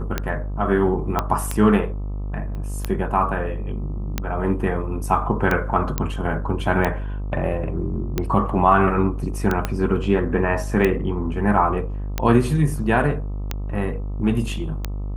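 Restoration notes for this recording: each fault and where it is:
buzz 50 Hz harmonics 26 -27 dBFS
tick 45 rpm -8 dBFS
1.19 pop -7 dBFS
2.55 pop -23 dBFS
5.98 pop -7 dBFS
9.65 pop -8 dBFS

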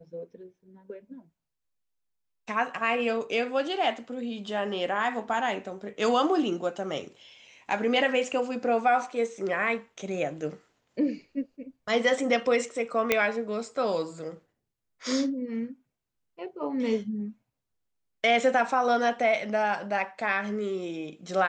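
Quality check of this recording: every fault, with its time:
13.12 pop -7 dBFS

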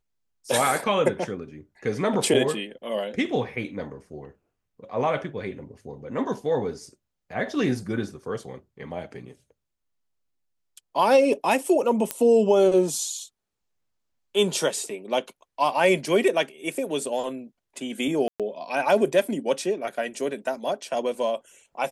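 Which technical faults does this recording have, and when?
12.11 pop -8 dBFS
18.28–18.4 gap 0.117 s

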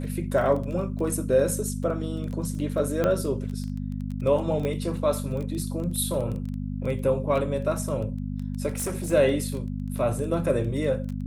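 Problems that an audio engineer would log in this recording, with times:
crackle 13/s -31 dBFS
hum 50 Hz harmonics 5 -31 dBFS
3.04 pop -12 dBFS
4.65 pop -18 dBFS
8.72–9.13 clipped -25 dBFS

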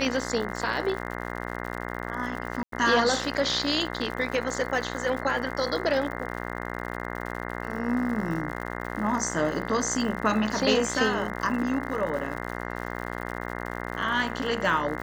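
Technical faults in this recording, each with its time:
buzz 60 Hz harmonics 35 -34 dBFS
crackle 120/s -35 dBFS
2.63–2.72 gap 93 ms

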